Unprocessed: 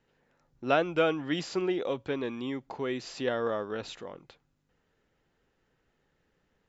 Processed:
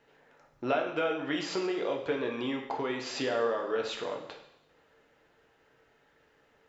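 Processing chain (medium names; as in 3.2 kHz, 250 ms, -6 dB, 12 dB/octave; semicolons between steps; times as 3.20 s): tone controls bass -12 dB, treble -6 dB; compression 3:1, threshold -41 dBFS, peak gain reduction 15.5 dB; two-slope reverb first 0.76 s, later 1.9 s, DRR 1.5 dB; trim +8.5 dB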